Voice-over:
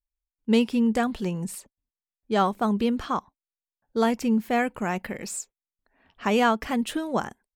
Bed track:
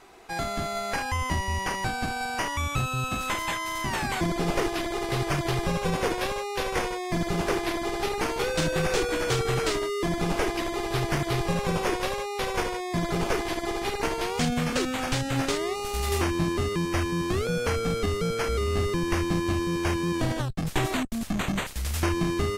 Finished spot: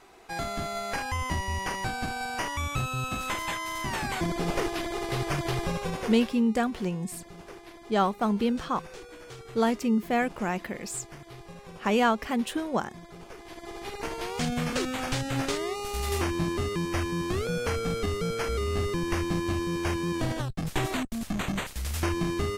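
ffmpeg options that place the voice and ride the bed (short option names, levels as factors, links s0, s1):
-filter_complex "[0:a]adelay=5600,volume=0.794[s0];[1:a]volume=5.01,afade=t=out:st=5.63:d=0.8:silence=0.149624,afade=t=in:st=13.36:d=1.26:silence=0.149624[s1];[s0][s1]amix=inputs=2:normalize=0"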